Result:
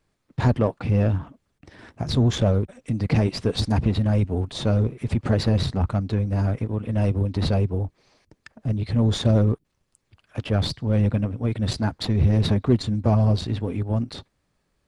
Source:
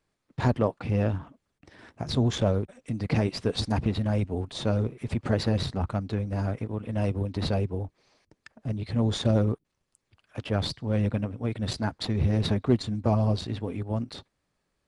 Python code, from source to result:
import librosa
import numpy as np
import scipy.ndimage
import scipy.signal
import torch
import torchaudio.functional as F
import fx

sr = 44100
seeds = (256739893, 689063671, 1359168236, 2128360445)

p1 = 10.0 ** (-25.5 / 20.0) * np.tanh(x / 10.0 ** (-25.5 / 20.0))
p2 = x + (p1 * 10.0 ** (-5.0 / 20.0))
y = fx.low_shelf(p2, sr, hz=190.0, db=5.0)